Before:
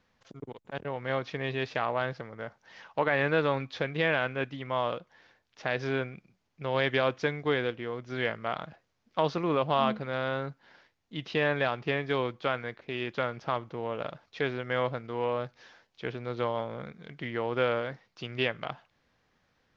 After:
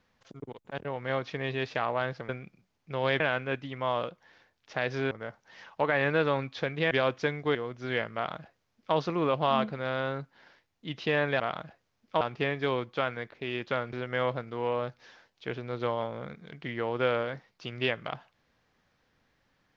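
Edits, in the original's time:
2.29–4.09 s: swap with 6.00–6.91 s
7.55–7.83 s: delete
8.43–9.24 s: copy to 11.68 s
13.40–14.50 s: delete

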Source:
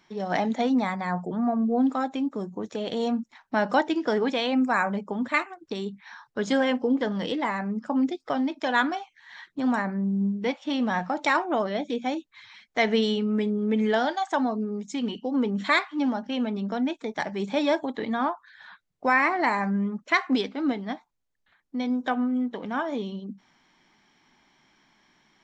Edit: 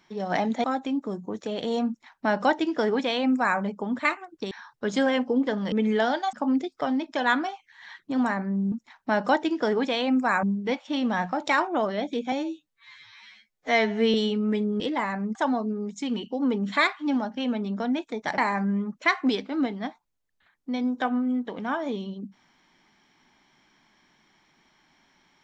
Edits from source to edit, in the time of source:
0.64–1.93 s: delete
3.17–4.88 s: copy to 10.20 s
5.80–6.05 s: delete
7.26–7.81 s: swap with 13.66–14.27 s
12.09–13.00 s: stretch 2×
17.30–19.44 s: delete

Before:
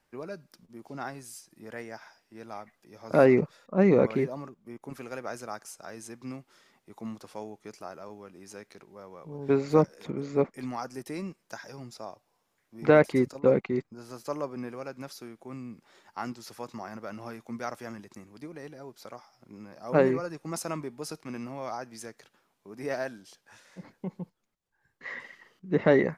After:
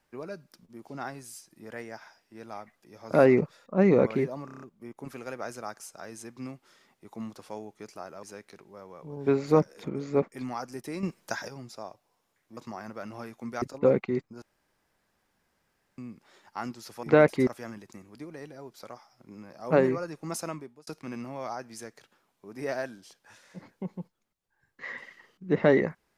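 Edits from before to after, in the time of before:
4.45 s: stutter 0.03 s, 6 plays
8.08–8.45 s: delete
11.25–11.70 s: gain +8 dB
12.79–13.23 s: swap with 16.64–17.69 s
14.03–15.59 s: room tone
20.62–21.09 s: fade out

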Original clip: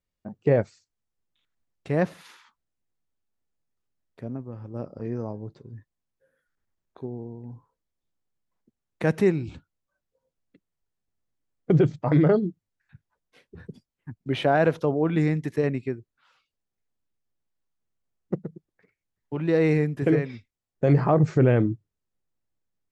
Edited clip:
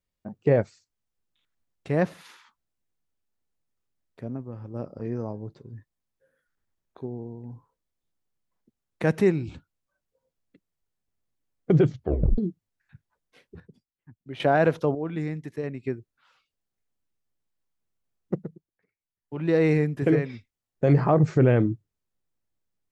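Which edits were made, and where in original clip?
11.90 s: tape stop 0.48 s
13.60–14.40 s: gain -11.5 dB
14.95–15.84 s: gain -7.5 dB
18.42–19.47 s: dip -11.5 dB, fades 0.24 s

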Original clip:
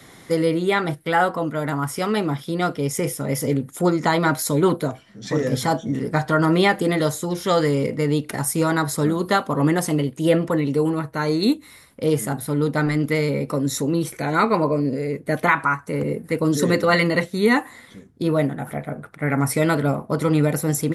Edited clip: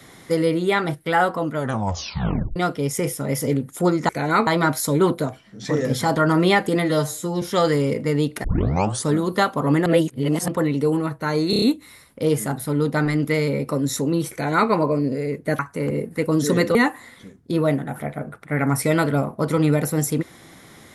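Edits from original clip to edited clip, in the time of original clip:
1.56 s: tape stop 1.00 s
5.78–6.29 s: delete
6.95–7.35 s: stretch 1.5×
8.37 s: tape start 0.62 s
9.79–10.41 s: reverse
11.43 s: stutter 0.03 s, 5 plays
14.13–14.51 s: copy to 4.09 s
15.40–15.72 s: delete
16.88–17.46 s: delete

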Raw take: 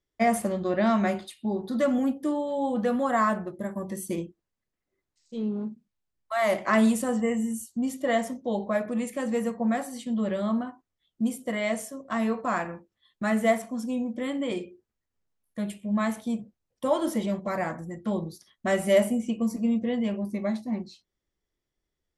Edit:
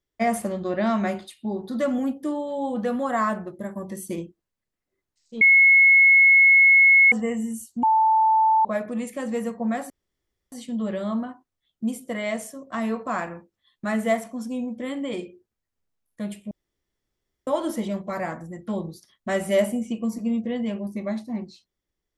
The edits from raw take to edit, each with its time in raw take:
5.41–7.12 s: bleep 2.18 kHz -11 dBFS
7.83–8.65 s: bleep 881 Hz -15 dBFS
9.90 s: insert room tone 0.62 s
15.89–16.85 s: room tone

